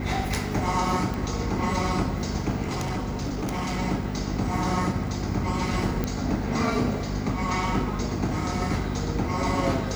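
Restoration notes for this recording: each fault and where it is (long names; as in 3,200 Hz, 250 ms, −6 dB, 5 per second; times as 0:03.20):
mains hum 50 Hz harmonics 5 −31 dBFS
0:01.14: click
0:02.64–0:03.80: clipping −24.5 dBFS
0:06.04: click −12 dBFS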